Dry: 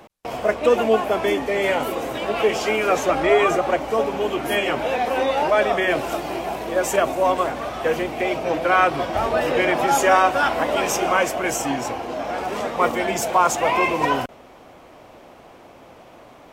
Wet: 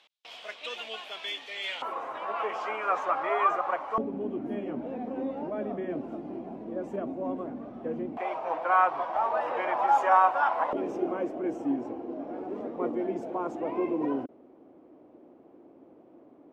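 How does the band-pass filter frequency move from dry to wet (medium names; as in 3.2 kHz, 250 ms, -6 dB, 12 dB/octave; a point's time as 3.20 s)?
band-pass filter, Q 3
3.5 kHz
from 1.82 s 1.1 kHz
from 3.98 s 240 Hz
from 8.17 s 960 Hz
from 10.73 s 310 Hz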